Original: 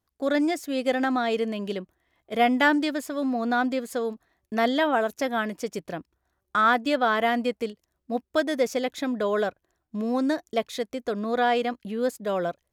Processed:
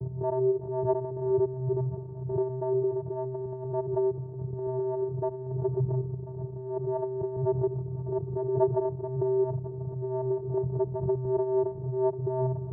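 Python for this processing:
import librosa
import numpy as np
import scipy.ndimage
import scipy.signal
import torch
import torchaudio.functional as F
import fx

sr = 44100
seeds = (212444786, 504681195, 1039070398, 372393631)

y = x + 0.5 * 10.0 ** (-25.5 / 20.0) * np.sign(x)
y = scipy.signal.sosfilt(scipy.signal.butter(16, 570.0, 'lowpass', fs=sr, output='sos'), y)
y = fx.vocoder(y, sr, bands=8, carrier='square', carrier_hz=129.0)
y = y + 10.0 ** (-19.0 / 20.0) * np.pad(y, (int(1038 * sr / 1000.0), 0))[:len(y)]
y = fx.pre_swell(y, sr, db_per_s=73.0)
y = y * librosa.db_to_amplitude(-3.5)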